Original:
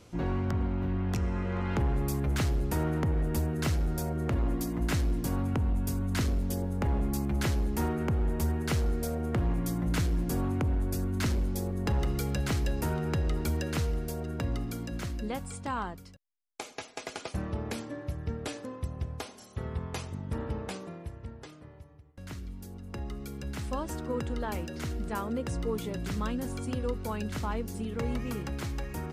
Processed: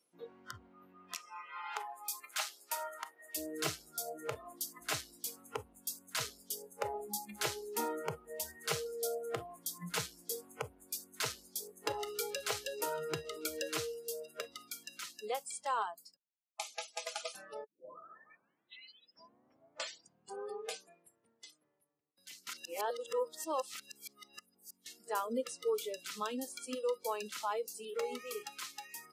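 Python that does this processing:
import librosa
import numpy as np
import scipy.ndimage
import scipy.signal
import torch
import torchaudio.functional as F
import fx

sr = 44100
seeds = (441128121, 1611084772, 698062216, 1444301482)

y = fx.highpass(x, sr, hz=630.0, slope=12, at=(1.14, 3.35), fade=0.02)
y = fx.edit(y, sr, fx.tape_start(start_s=17.64, length_s=3.11),
    fx.reverse_span(start_s=22.47, length_s=2.39), tone=tone)
y = scipy.signal.sosfilt(scipy.signal.bessel(4, 290.0, 'highpass', norm='mag', fs=sr, output='sos'), y)
y = fx.noise_reduce_blind(y, sr, reduce_db=26)
y = fx.dynamic_eq(y, sr, hz=1800.0, q=1.7, threshold_db=-56.0, ratio=4.0, max_db=-6)
y = F.gain(torch.from_numpy(y), 2.0).numpy()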